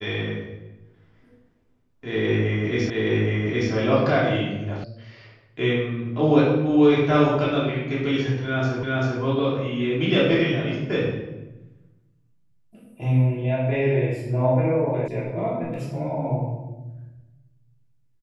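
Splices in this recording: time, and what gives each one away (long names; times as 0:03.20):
0:02.90: the same again, the last 0.82 s
0:04.84: cut off before it has died away
0:08.83: the same again, the last 0.39 s
0:15.08: cut off before it has died away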